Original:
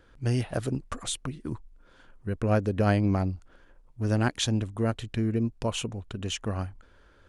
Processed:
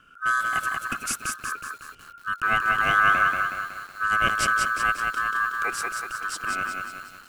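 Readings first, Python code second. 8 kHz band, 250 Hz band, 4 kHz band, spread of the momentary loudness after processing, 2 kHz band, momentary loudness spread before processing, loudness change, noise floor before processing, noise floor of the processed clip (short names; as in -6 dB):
+5.0 dB, -14.0 dB, +1.5 dB, 14 LU, +19.0 dB, 12 LU, +5.0 dB, -58 dBFS, -50 dBFS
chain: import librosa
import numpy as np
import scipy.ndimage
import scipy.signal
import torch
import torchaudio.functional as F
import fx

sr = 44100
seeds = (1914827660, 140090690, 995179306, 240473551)

y = fx.high_shelf(x, sr, hz=10000.0, db=7.5)
y = fx.fixed_phaser(y, sr, hz=1200.0, stages=4)
y = y * np.sin(2.0 * np.pi * 1400.0 * np.arange(len(y)) / sr)
y = fx.echo_crushed(y, sr, ms=185, feedback_pct=55, bits=9, wet_db=-3.5)
y = y * 10.0 ** (6.5 / 20.0)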